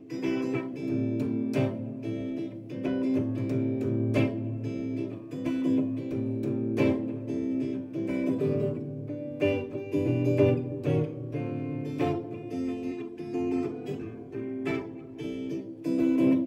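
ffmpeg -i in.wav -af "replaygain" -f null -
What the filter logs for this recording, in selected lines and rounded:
track_gain = +9.6 dB
track_peak = 0.214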